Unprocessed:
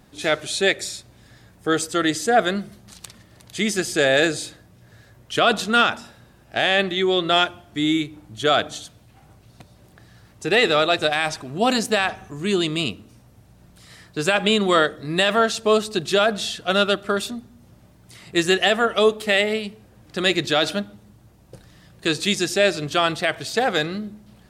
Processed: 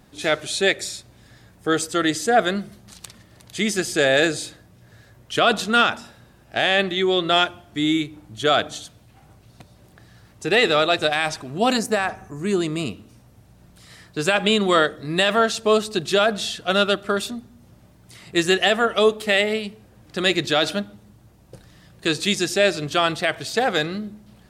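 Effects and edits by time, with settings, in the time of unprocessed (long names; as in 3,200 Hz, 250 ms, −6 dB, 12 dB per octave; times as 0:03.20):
0:11.77–0:12.91: parametric band 3,300 Hz −11 dB 0.79 octaves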